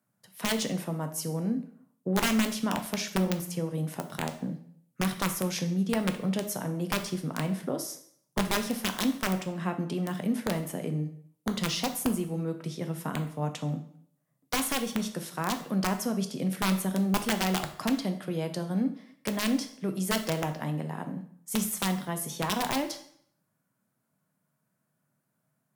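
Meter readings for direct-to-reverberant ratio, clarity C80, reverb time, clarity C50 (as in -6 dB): 6.5 dB, 14.5 dB, 0.60 s, 11.0 dB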